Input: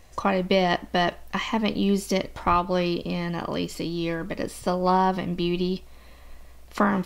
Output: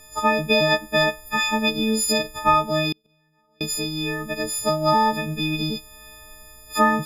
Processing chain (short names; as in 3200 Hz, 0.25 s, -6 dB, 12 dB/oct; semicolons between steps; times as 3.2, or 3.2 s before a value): frequency quantiser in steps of 6 st; 2.92–3.61 flipped gate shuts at -20 dBFS, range -38 dB